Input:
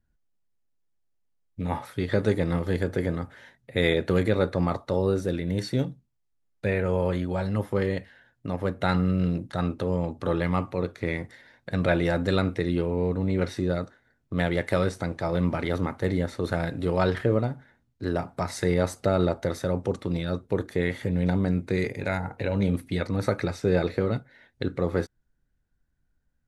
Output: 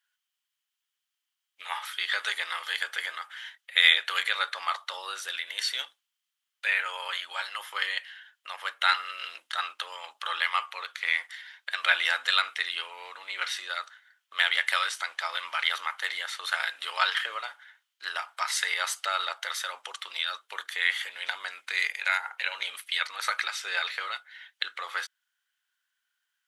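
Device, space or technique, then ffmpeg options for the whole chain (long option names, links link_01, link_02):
headphones lying on a table: -af "highpass=frequency=1200:width=0.5412,highpass=frequency=1200:width=1.3066,equalizer=frequency=3100:width_type=o:width=0.31:gain=11.5,volume=7.5dB"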